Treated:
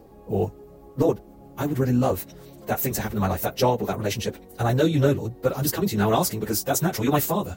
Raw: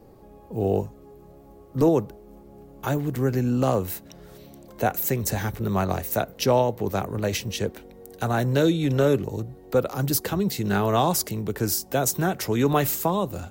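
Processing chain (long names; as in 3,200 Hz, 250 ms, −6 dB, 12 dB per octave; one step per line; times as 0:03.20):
time stretch by phase vocoder 0.56×
level +4 dB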